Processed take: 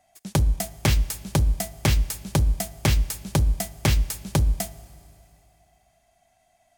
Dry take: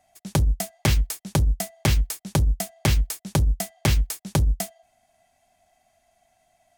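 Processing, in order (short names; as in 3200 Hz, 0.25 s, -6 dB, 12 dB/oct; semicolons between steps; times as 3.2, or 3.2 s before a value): Schroeder reverb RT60 2.6 s, combs from 25 ms, DRR 17.5 dB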